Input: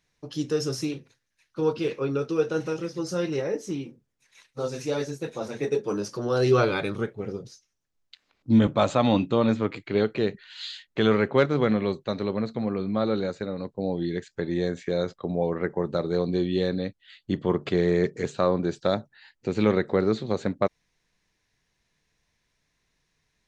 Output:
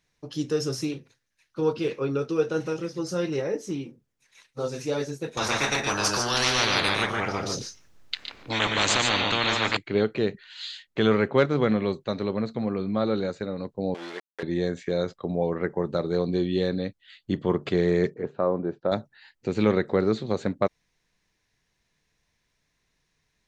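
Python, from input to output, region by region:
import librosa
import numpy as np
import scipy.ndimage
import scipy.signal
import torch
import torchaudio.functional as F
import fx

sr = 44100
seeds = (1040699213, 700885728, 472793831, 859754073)

y = fx.chain(x, sr, fx.high_shelf(hz=4200.0, db=-8.0),
    fx.echo_multitap(ms=(117, 146), db=(-10.5, -7.5)),
    fx.spectral_comp(ratio=10.0), at=(5.37, 9.77))
y = fx.chain(y, sr, fx.sample_gate(floor_db=-32.0),
    fx.bandpass_edges(low_hz=570.0, high_hz=4600.0), at=(13.94, 14.43))
y = fx.chain(y, sr, fx.lowpass(hz=1100.0, slope=12),
    fx.low_shelf(hz=150.0, db=-10.5), at=(18.14, 18.92))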